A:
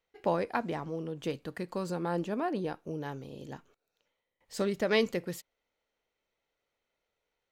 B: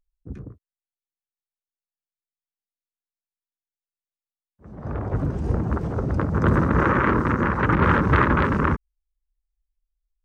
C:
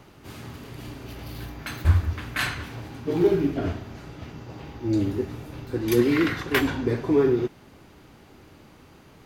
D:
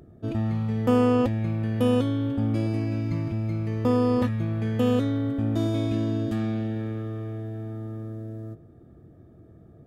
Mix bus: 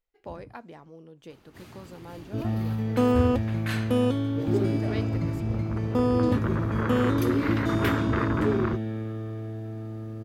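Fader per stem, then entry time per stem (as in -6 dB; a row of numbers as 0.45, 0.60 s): -11.0, -11.0, -8.0, -1.5 dB; 0.00, 0.00, 1.30, 2.10 s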